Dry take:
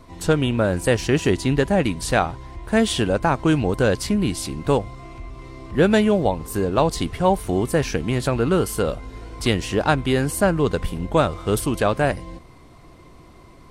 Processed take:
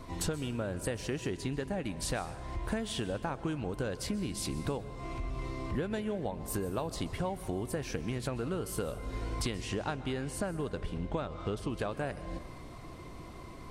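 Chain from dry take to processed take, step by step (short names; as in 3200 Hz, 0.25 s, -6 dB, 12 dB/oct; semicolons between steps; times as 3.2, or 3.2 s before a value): 9.42–11.78 LPF 11000 Hz -> 4700 Hz 12 dB/oct; compressor 16:1, threshold -31 dBFS, peak gain reduction 20.5 dB; plate-style reverb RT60 1.4 s, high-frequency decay 0.6×, pre-delay 0.115 s, DRR 13 dB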